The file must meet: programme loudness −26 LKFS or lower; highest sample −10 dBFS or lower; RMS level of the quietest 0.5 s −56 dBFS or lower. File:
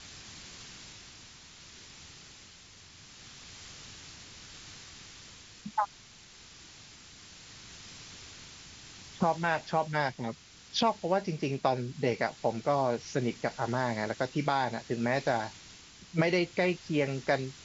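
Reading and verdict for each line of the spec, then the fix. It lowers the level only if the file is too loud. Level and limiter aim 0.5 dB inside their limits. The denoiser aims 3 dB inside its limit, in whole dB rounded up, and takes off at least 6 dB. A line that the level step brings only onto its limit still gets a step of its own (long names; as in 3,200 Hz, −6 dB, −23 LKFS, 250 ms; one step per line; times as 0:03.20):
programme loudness −31.0 LKFS: in spec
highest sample −12.0 dBFS: in spec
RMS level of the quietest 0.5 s −54 dBFS: out of spec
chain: broadband denoise 6 dB, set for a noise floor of −54 dBFS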